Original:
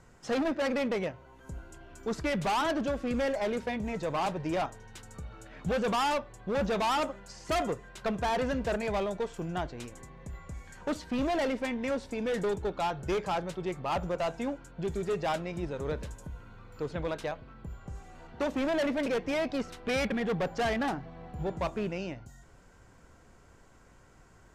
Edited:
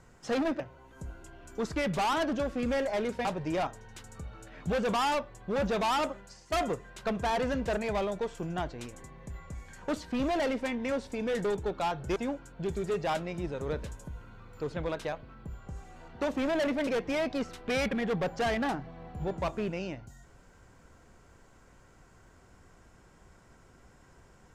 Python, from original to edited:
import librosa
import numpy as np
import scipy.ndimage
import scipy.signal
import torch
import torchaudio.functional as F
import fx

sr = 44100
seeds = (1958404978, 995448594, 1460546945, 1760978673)

y = fx.edit(x, sr, fx.cut(start_s=0.6, length_s=0.48),
    fx.cut(start_s=3.73, length_s=0.51),
    fx.fade_out_to(start_s=7.14, length_s=0.37, floor_db=-12.5),
    fx.cut(start_s=13.15, length_s=1.2), tone=tone)